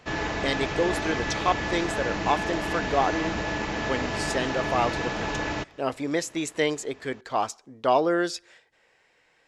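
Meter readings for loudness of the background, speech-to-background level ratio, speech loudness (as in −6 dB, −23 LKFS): −29.0 LKFS, 1.0 dB, −28.0 LKFS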